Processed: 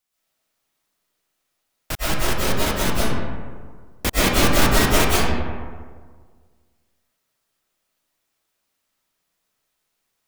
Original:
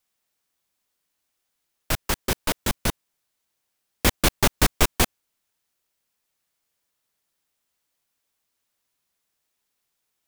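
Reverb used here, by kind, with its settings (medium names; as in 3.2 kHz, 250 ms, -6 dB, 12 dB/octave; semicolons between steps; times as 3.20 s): algorithmic reverb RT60 1.7 s, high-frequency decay 0.45×, pre-delay 85 ms, DRR -8.5 dB; trim -3.5 dB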